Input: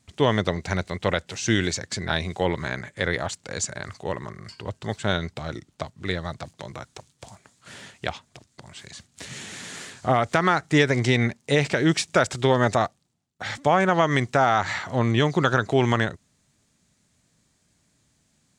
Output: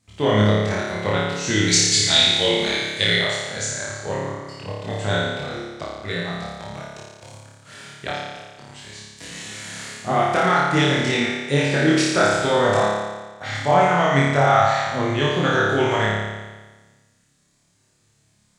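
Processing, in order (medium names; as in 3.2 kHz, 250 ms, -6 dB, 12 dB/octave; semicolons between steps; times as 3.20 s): 1.68–3.14 s: resonant high shelf 2.1 kHz +11.5 dB, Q 1.5; chorus 0.32 Hz, delay 18.5 ms, depth 3.5 ms; flutter echo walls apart 4.9 m, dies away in 1.3 s; trim +1 dB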